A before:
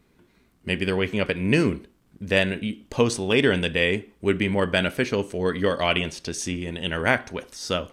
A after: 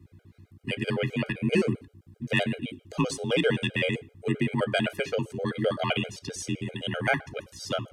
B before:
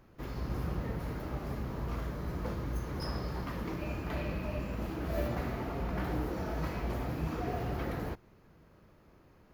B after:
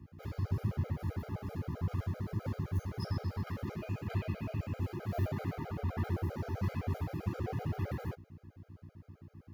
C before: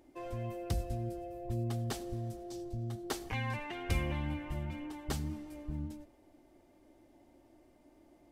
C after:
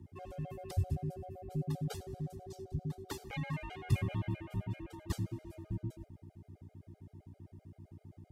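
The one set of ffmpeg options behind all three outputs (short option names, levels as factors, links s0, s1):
-filter_complex "[0:a]acrossover=split=120|1000|6400[s0][s1][s2][s3];[s0]acontrast=75[s4];[s4][s1][s2][s3]amix=inputs=4:normalize=0,aeval=exprs='val(0)+0.00447*(sin(2*PI*60*n/s)+sin(2*PI*2*60*n/s)/2+sin(2*PI*3*60*n/s)/3+sin(2*PI*4*60*n/s)/4+sin(2*PI*5*60*n/s)/5)':c=same,afreqshift=35,afftfilt=real='re*gt(sin(2*PI*7.7*pts/sr)*(1-2*mod(floor(b*sr/1024/410),2)),0)':imag='im*gt(sin(2*PI*7.7*pts/sr)*(1-2*mod(floor(b*sr/1024/410),2)),0)':win_size=1024:overlap=0.75,volume=0.794"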